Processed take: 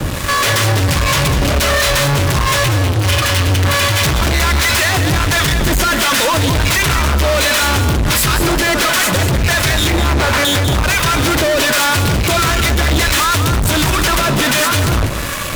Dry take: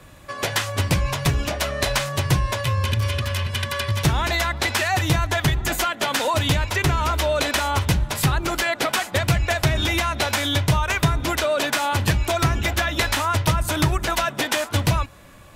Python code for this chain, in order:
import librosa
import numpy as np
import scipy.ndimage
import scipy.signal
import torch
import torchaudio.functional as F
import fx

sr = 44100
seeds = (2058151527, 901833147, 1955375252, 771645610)

p1 = fx.highpass(x, sr, hz=100.0, slope=12, at=(11.09, 12.32))
p2 = fx.peak_eq(p1, sr, hz=770.0, db=-13.0, octaves=0.31)
p3 = fx.lowpass(p2, sr, hz=1500.0, slope=12, at=(9.9, 10.45))
p4 = fx.over_compress(p3, sr, threshold_db=-28.0, ratio=-0.5)
p5 = p3 + (p4 * librosa.db_to_amplitude(-2.0))
p6 = fx.harmonic_tremolo(p5, sr, hz=1.4, depth_pct=70, crossover_hz=650.0)
p7 = fx.fuzz(p6, sr, gain_db=42.0, gate_db=-44.0)
y = p7 + fx.echo_single(p7, sr, ms=196, db=-8.5, dry=0)